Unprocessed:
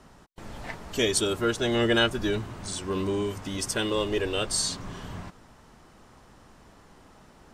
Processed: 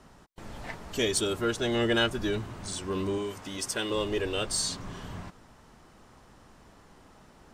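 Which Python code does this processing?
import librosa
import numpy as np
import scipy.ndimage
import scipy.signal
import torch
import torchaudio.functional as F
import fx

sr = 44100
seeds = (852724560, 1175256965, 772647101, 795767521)

p1 = 10.0 ** (-26.0 / 20.0) * np.tanh(x / 10.0 ** (-26.0 / 20.0))
p2 = x + (p1 * 10.0 ** (-10.0 / 20.0))
p3 = fx.low_shelf(p2, sr, hz=200.0, db=-9.5, at=(3.18, 3.9))
y = p3 * 10.0 ** (-4.0 / 20.0)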